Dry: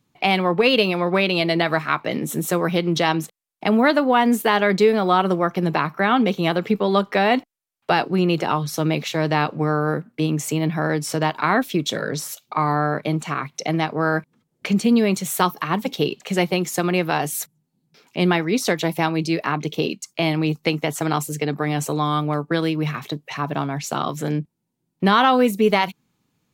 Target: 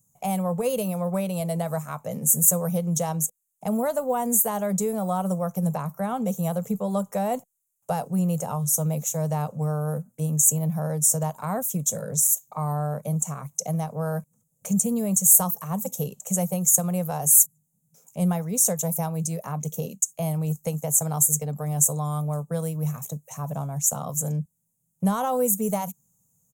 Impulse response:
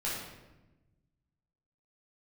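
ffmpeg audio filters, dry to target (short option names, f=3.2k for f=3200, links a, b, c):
-af "firequalizer=gain_entry='entry(180,0);entry(330,-24);entry(500,-3);entry(1800,-22);entry(4600,-20);entry(6600,14)':delay=0.05:min_phase=1,volume=-1dB"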